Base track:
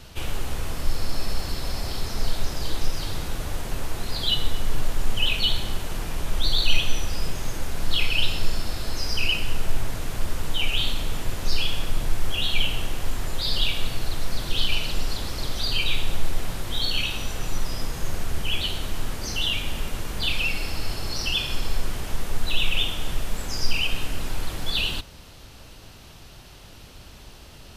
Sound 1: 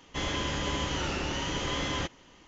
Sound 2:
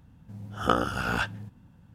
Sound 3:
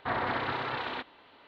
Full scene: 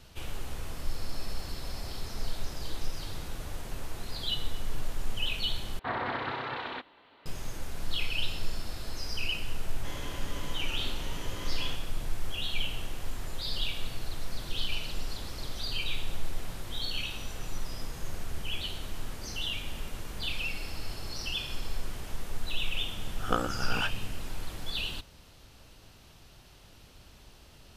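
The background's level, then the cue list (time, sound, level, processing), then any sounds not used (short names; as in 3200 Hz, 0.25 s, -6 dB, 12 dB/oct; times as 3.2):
base track -9 dB
5.79 replace with 3 -2 dB
9.69 add 1 -11 dB
22.63 add 2 -9 dB + AGC gain up to 7.5 dB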